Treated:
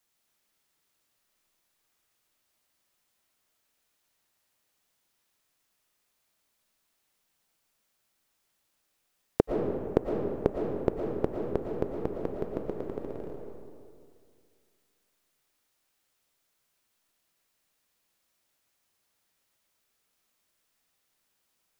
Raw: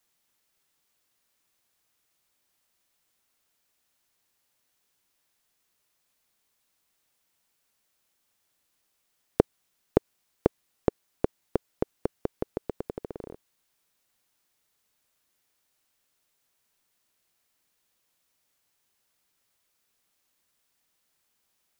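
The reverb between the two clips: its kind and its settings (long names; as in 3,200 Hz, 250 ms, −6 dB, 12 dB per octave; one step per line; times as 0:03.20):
comb and all-pass reverb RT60 2.2 s, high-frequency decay 0.55×, pre-delay 75 ms, DRR 0.5 dB
level −2.5 dB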